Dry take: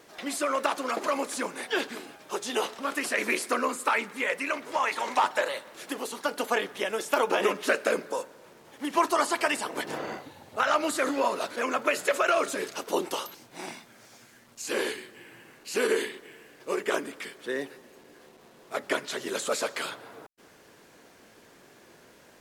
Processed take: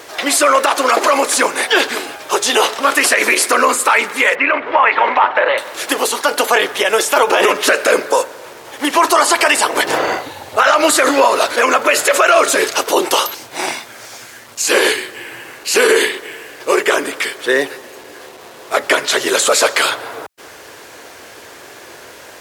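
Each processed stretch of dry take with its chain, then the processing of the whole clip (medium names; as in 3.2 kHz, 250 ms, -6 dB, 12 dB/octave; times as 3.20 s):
4.35–5.58 s: low-pass 2.7 kHz 24 dB/octave + compression, threshold -24 dBFS
whole clip: high-pass 62 Hz; peaking EQ 190 Hz -14.5 dB 1.2 oct; loudness maximiser +21 dB; trim -1 dB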